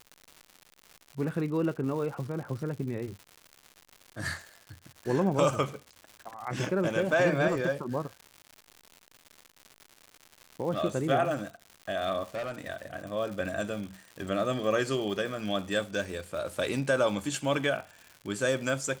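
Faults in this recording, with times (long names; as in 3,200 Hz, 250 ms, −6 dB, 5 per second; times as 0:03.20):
surface crackle 200 per second −38 dBFS
0:12.34–0:12.70: clipping −31 dBFS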